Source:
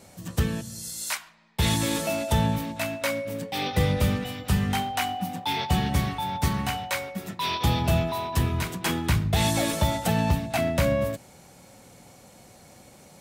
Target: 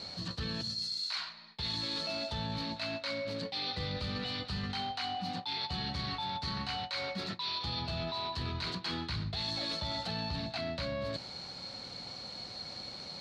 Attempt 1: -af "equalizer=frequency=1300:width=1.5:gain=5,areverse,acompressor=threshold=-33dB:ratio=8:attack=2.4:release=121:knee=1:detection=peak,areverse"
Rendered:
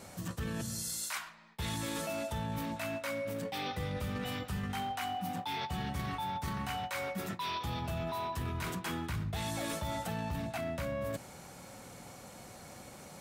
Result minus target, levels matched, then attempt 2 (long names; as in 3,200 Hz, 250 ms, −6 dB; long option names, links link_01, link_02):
4,000 Hz band −8.0 dB
-af "lowpass=frequency=4300:width_type=q:width=14,equalizer=frequency=1300:width=1.5:gain=5,areverse,acompressor=threshold=-33dB:ratio=8:attack=2.4:release=121:knee=1:detection=peak,areverse"